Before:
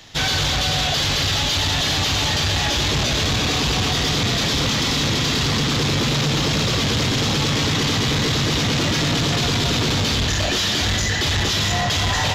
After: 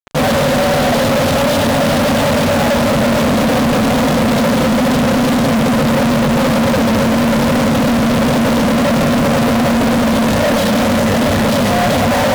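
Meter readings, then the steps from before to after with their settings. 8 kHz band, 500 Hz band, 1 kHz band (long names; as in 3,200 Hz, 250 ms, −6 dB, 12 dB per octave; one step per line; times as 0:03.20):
−0.5 dB, +13.5 dB, +9.5 dB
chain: pair of resonant band-passes 360 Hz, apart 1.2 octaves
fuzz pedal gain 56 dB, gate −51 dBFS
level +1.5 dB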